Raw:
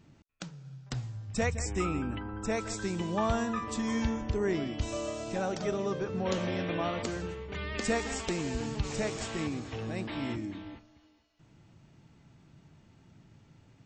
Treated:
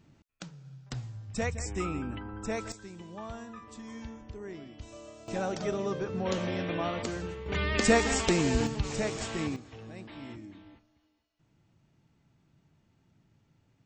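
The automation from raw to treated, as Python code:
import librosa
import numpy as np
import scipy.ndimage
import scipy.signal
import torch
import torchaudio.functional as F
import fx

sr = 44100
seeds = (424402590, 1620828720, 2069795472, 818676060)

y = fx.gain(x, sr, db=fx.steps((0.0, -2.0), (2.72, -12.5), (5.28, 0.0), (7.46, 7.0), (8.67, 1.0), (9.56, -9.0)))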